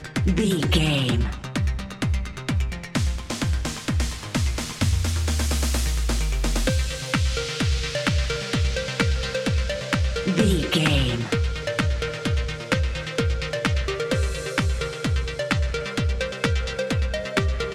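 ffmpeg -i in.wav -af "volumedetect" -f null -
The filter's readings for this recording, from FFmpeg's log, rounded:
mean_volume: -23.4 dB
max_volume: -5.2 dB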